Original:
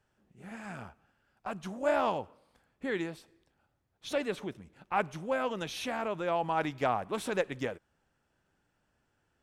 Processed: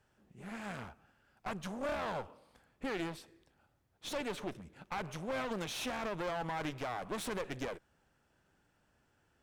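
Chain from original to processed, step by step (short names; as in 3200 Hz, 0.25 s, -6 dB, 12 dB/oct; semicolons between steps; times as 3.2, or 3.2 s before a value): limiter -26.5 dBFS, peak gain reduction 10 dB; one-sided clip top -49.5 dBFS; gain +2.5 dB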